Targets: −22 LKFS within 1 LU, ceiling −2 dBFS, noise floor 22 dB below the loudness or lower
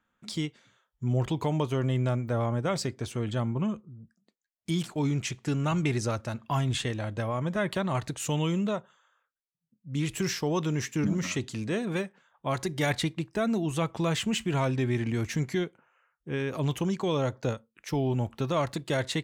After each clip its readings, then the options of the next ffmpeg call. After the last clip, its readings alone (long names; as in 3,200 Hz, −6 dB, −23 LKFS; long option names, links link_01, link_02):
integrated loudness −30.0 LKFS; sample peak −14.5 dBFS; target loudness −22.0 LKFS
→ -af "volume=8dB"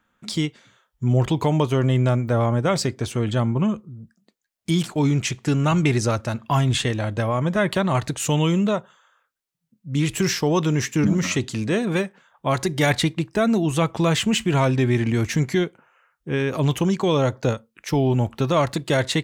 integrated loudness −22.0 LKFS; sample peak −6.5 dBFS; background noise floor −75 dBFS